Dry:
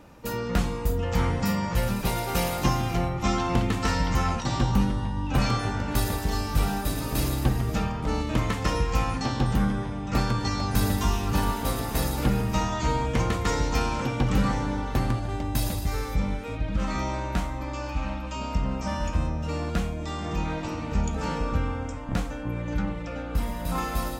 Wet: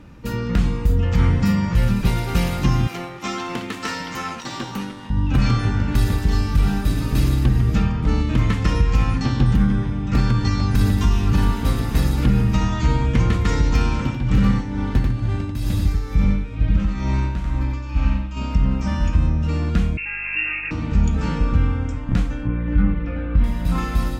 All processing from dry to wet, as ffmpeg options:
-filter_complex "[0:a]asettb=1/sr,asplit=3[a][b][c];[a]atrim=end=2.874[d];[b]atrim=start=2.87:end=5.1,asetpts=PTS-STARTPTS,afade=t=in:d=0.004:c=qsin,afade=t=out:st=2.226:d=0.004:c=qsin,highpass=380,highshelf=f=10k:g=9.5,aeval=exprs='sgn(val(0))*max(abs(val(0))-0.00473,0)':c=same[e];[c]atrim=start=5.096[f];[d][e]acrossfade=d=0.004:c1=hsin:c2=qsin[g];[g][f]acrossfade=d=0.004:c1=qsin:c2=hsin,asettb=1/sr,asplit=3[h][i][j];[h]atrim=end=13.964[k];[i]atrim=start=13.96:end=18.37,asetpts=PTS-STARTPTS,afade=t=in:d=0.004:c=qsin,afade=t=out:st=4.406:d=0.004:c=qsin,tremolo=f=2.2:d=0.7,aecho=1:1:91:0.631,atrim=end_sample=194481[l];[j]atrim=start=18.366[m];[k][l]acrossfade=d=0.004:c1=hsin:c2=qsin[n];[n][m]acrossfade=d=0.004:c1=qsin:c2=hsin,asettb=1/sr,asplit=3[o][p][q];[o]atrim=end=19.974[r];[p]atrim=start=19.97:end=20.71,asetpts=PTS-STARTPTS,afade=t=in:d=0.004:c=qsin,afade=t=out:st=0.736:d=0.004:c=qsin,lowpass=f=2.4k:t=q:w=0.5098,lowpass=f=2.4k:t=q:w=0.6013,lowpass=f=2.4k:t=q:w=0.9,lowpass=f=2.4k:t=q:w=2.563,afreqshift=-2800,aeval=exprs='val(0)+0.002*(sin(2*PI*50*n/s)+sin(2*PI*2*50*n/s)/2+sin(2*PI*3*50*n/s)/3+sin(2*PI*4*50*n/s)/4+sin(2*PI*5*50*n/s)/5)':c=same[s];[q]atrim=start=20.706[t];[r][s]acrossfade=d=0.004:c1=hsin:c2=qsin[u];[u][t]acrossfade=d=0.004:c1=qsin:c2=hsin,asettb=1/sr,asplit=3[v][w][x];[v]atrim=end=22.474[y];[w]atrim=start=22.47:end=23.44,asetpts=PTS-STARTPTS,afade=t=in:d=0.004:c=qsin,afade=t=out:st=0.966:d=0.004:c=qsin,lowpass=2.4k,asplit=2[z][aa];[aa]adelay=21,volume=-5dB[ab];[z][ab]amix=inputs=2:normalize=0,atrim=end_sample=42777[ac];[x]atrim=start=23.436[ad];[y][ac]acrossfade=d=0.004:c1=hsin:c2=qsin[ae];[ae][ad]acrossfade=d=0.004:c1=qsin:c2=hsin,lowpass=f=1.7k:p=1,equalizer=f=680:t=o:w=1.9:g=-13.5,alimiter=level_in=17.5dB:limit=-1dB:release=50:level=0:latency=1,volume=-6.5dB"

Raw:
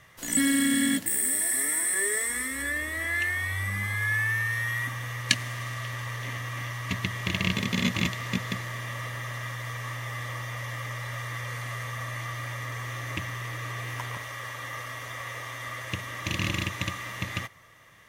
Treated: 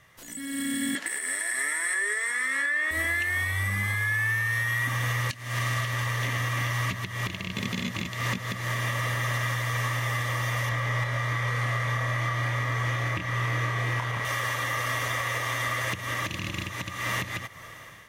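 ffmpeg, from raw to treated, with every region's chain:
-filter_complex "[0:a]asettb=1/sr,asplit=3[a][b][c];[a]atrim=end=0.954[d];[b]atrim=start=0.95:end=2.91,asetpts=PTS-STARTPTS,afade=t=in:d=0.004:c=qsin,afade=t=out:st=1.956:d=0.004:c=qsin,highpass=410,lowpass=7.8k,equalizer=f=1.6k:w=0.81:g=9.5[e];[c]atrim=start=2.906[f];[d][e]acrossfade=d=0.004:c1=hsin:c2=qsin[g];[g][f]acrossfade=d=0.004:c1=qsin:c2=hsin,asettb=1/sr,asplit=3[h][i][j];[h]atrim=end=10.694[k];[i]atrim=start=10.69:end=14.25,asetpts=PTS-STARTPTS,afade=t=in:d=0.004:c=qsin,afade=t=out:st=3.556:d=0.004:c=qsin,lowpass=f=3.1k:p=1,asplit=2[l][m];[m]adelay=27,volume=-3.5dB[n];[l][n]amix=inputs=2:normalize=0,atrim=end_sample=156996[o];[j]atrim=start=14.246[p];[k][o]acrossfade=d=0.004:c1=hsin:c2=qsin[q];[q][p]acrossfade=d=0.004:c1=qsin:c2=hsin,acompressor=threshold=-34dB:ratio=6,alimiter=level_in=6.5dB:limit=-24dB:level=0:latency=1:release=290,volume=-6.5dB,dynaudnorm=f=210:g=5:m=15dB,volume=-3dB"

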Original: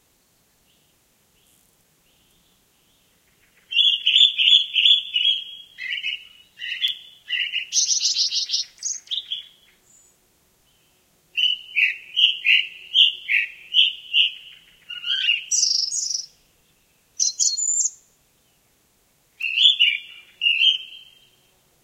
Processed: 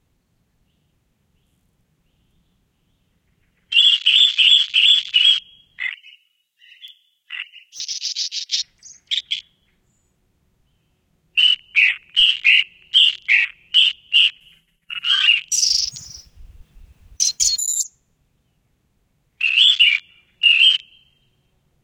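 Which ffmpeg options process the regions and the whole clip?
-filter_complex "[0:a]asettb=1/sr,asplit=3[a][b][c];[a]atrim=end=3.814[d];[b]atrim=start=3.81:end=4.68,asetpts=PTS-STARTPTS,afade=t=in:d=0.004:c=qsin,afade=t=out:st=0.866:d=0.004:c=qsin,bandpass=f=3.4k:t=q:w=1.1,asoftclip=type=hard:threshold=-5dB[e];[c]atrim=start=4.676[f];[d][e]acrossfade=d=0.004:c1=hsin:c2=qsin[g];[g][f]acrossfade=d=0.004:c1=qsin:c2=hsin,asettb=1/sr,asplit=3[h][i][j];[h]atrim=end=5.894[k];[i]atrim=start=5.89:end=8.52,asetpts=PTS-STARTPTS,afade=t=in:d=0.004:c=qsin,afade=t=out:st=2.626:d=0.004:c=qsin,aderivative,bandreject=f=4.2k:w=24,asoftclip=type=hard:threshold=-17dB[l];[j]atrim=start=8.516[m];[k][l]acrossfade=d=0.004:c1=hsin:c2=qsin[n];[n][m]acrossfade=d=0.004:c1=qsin:c2=hsin,asettb=1/sr,asplit=3[o][p][q];[o]atrim=end=14.404[r];[p]atrim=start=14.4:end=15.07,asetpts=PTS-STARTPTS,afade=t=in:d=0.004:c=qsin,afade=t=out:st=0.666:d=0.004:c=qsin,agate=range=-33dB:threshold=-47dB:ratio=3:release=100:detection=peak,equalizer=f=11k:t=o:w=1.1:g=15,aecho=1:1:5.2:0.59,atrim=end_sample=29547[s];[q]atrim=start=15.066[t];[r][s]acrossfade=d=0.004:c1=hsin:c2=qsin[u];[u][t]acrossfade=d=0.004:c1=qsin:c2=hsin,asettb=1/sr,asplit=3[v][w][x];[v]atrim=end=15.634[y];[w]atrim=start=15.63:end=17.63,asetpts=PTS-STARTPTS,afade=t=in:d=0.004:c=qsin,afade=t=out:st=1.996:d=0.004:c=qsin,aeval=exprs='val(0)+0.5*0.0398*sgn(val(0))':c=same,agate=range=-33dB:threshold=-24dB:ratio=3:release=100:detection=peak[z];[x]atrim=start=17.626[aa];[y][z]acrossfade=d=0.004:c1=hsin:c2=qsin[ab];[ab][aa]acrossfade=d=0.004:c1=qsin:c2=hsin,bass=f=250:g=13,treble=f=4k:g=-8,afwtdn=0.0282,alimiter=level_in=11dB:limit=-1dB:release=50:level=0:latency=1,volume=-2.5dB"

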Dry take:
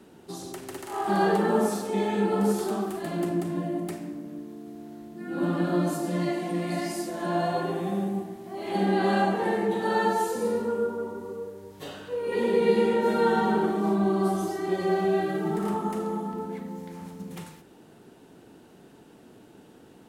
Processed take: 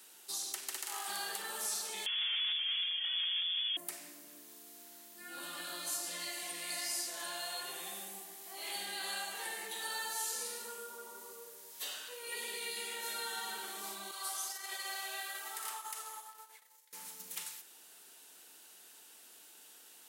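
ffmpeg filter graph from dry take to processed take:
-filter_complex "[0:a]asettb=1/sr,asplit=3[a][b][c];[a]atrim=end=2.064[d];[b]atrim=start=2.06:end=3.77,asetpts=PTS-STARTPTS,afade=t=in:d=0.004:c=qsin,afade=t=out:st=1.706:d=0.004:c=qsin,lowshelf=f=390:g=5.5,asoftclip=type=hard:threshold=-26dB,lowpass=f=3.1k:t=q:w=0.5098,lowpass=f=3.1k:t=q:w=0.6013,lowpass=f=3.1k:t=q:w=0.9,lowpass=f=3.1k:t=q:w=2.563,afreqshift=-3600[e];[c]atrim=start=3.766[f];[d][e]acrossfade=d=0.004:c1=hsin:c2=qsin[g];[g][f]acrossfade=d=0.004:c1=qsin:c2=hsin,asettb=1/sr,asplit=3[h][i][j];[h]atrim=end=14.114[k];[i]atrim=start=14.11:end=16.93,asetpts=PTS-STARTPTS,afade=t=in:d=0.004:c=qsin,afade=t=out:st=2.816:d=0.004:c=qsin,agate=range=-33dB:threshold=-28dB:ratio=3:release=100:detection=peak,highpass=770[l];[j]atrim=start=16.926[m];[k][l]acrossfade=d=0.004:c1=hsin:c2=qsin[n];[n][m]acrossfade=d=0.004:c1=qsin:c2=hsin,lowshelf=f=450:g=-9.5,acrossover=split=1900|6500[o][p][q];[o]acompressor=threshold=-36dB:ratio=4[r];[p]acompressor=threshold=-45dB:ratio=4[s];[q]acompressor=threshold=-55dB:ratio=4[t];[r][s][t]amix=inputs=3:normalize=0,aderivative,volume=10.5dB"

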